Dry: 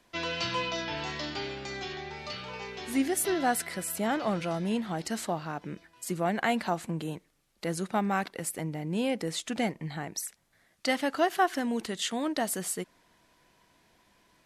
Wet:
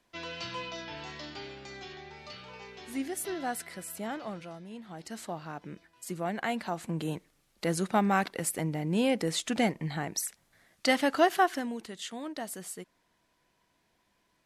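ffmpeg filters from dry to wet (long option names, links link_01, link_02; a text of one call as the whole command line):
ffmpeg -i in.wav -af "volume=11.5dB,afade=type=out:start_time=4.04:duration=0.65:silence=0.354813,afade=type=in:start_time=4.69:duration=0.83:silence=0.266073,afade=type=in:start_time=6.72:duration=0.41:silence=0.446684,afade=type=out:start_time=11.27:duration=0.51:silence=0.298538" out.wav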